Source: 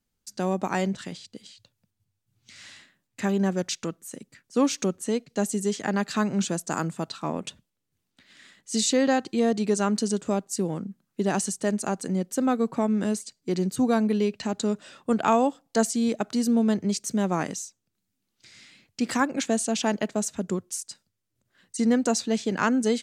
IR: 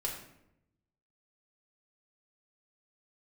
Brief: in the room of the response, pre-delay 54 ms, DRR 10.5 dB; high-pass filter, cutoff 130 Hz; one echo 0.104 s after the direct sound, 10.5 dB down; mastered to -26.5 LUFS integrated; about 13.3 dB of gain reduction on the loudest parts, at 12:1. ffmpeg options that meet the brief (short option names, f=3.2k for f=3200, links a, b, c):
-filter_complex "[0:a]highpass=130,acompressor=threshold=-31dB:ratio=12,aecho=1:1:104:0.299,asplit=2[a][b];[1:a]atrim=start_sample=2205,adelay=54[c];[b][c]afir=irnorm=-1:irlink=0,volume=-12.5dB[d];[a][d]amix=inputs=2:normalize=0,volume=9.5dB"